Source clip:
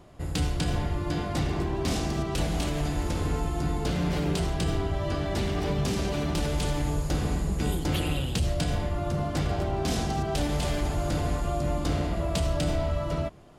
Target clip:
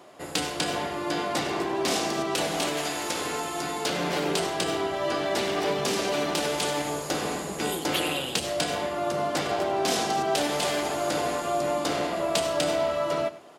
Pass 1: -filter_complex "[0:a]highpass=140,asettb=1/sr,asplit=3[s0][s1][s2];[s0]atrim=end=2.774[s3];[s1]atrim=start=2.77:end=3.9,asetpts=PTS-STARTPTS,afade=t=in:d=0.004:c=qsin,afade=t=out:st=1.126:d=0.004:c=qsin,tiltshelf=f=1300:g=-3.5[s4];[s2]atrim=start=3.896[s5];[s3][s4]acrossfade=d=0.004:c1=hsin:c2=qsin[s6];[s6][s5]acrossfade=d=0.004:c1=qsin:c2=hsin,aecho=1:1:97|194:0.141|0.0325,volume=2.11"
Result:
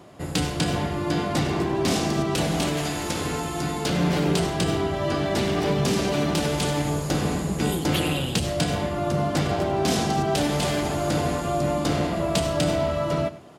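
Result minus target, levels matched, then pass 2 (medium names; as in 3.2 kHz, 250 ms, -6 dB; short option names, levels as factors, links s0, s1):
125 Hz band +11.5 dB
-filter_complex "[0:a]highpass=390,asettb=1/sr,asplit=3[s0][s1][s2];[s0]atrim=end=2.774[s3];[s1]atrim=start=2.77:end=3.9,asetpts=PTS-STARTPTS,afade=t=in:d=0.004:c=qsin,afade=t=out:st=1.126:d=0.004:c=qsin,tiltshelf=f=1300:g=-3.5[s4];[s2]atrim=start=3.896[s5];[s3][s4]acrossfade=d=0.004:c1=hsin:c2=qsin[s6];[s6][s5]acrossfade=d=0.004:c1=qsin:c2=hsin,aecho=1:1:97|194:0.141|0.0325,volume=2.11"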